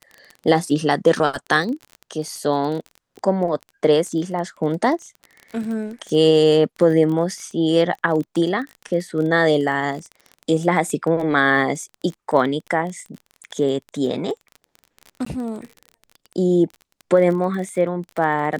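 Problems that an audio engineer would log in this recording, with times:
crackle 22/s -28 dBFS
15.25–15.26 gap 14 ms

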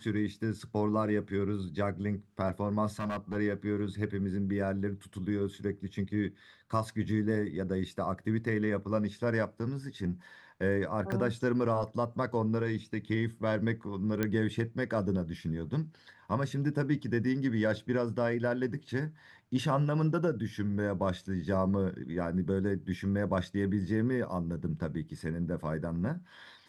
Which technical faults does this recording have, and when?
2.99–3.37 clipped -30 dBFS
11.12 gap 3.3 ms
14.23 pop -16 dBFS

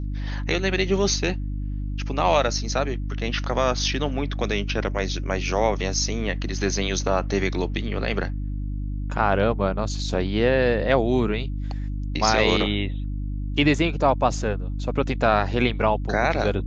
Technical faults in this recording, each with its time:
hum 50 Hz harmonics 6 -28 dBFS

